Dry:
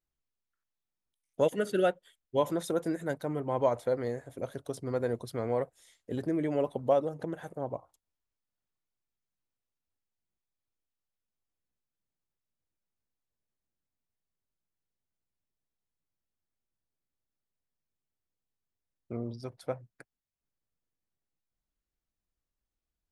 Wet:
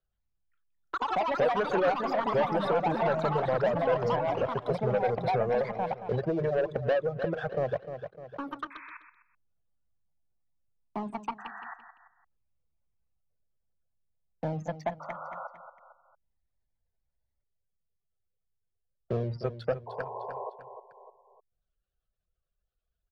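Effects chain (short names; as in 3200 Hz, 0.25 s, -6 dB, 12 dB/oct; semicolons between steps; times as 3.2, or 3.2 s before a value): spectral gate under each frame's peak -30 dB strong; fixed phaser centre 1400 Hz, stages 8; in parallel at +2 dB: compressor, threshold -39 dBFS, peak gain reduction 17 dB; on the sum: sample leveller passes 3; reverb removal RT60 0.74 s; painted sound noise, 19.86–20.5, 380–1100 Hz -37 dBFS; on a send: feedback echo 0.302 s, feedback 33%, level -12 dB; on the sum: echoes that change speed 0.117 s, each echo +5 st, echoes 3; air absorption 180 m; three-band squash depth 40%; gain -5 dB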